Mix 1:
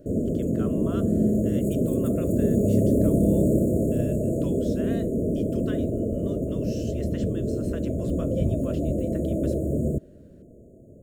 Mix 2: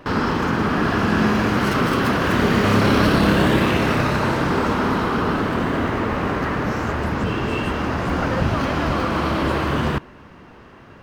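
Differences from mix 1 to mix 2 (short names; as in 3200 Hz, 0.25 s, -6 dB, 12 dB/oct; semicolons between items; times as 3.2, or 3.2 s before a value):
background: remove brick-wall FIR band-stop 680–6600 Hz; reverb: on, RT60 0.65 s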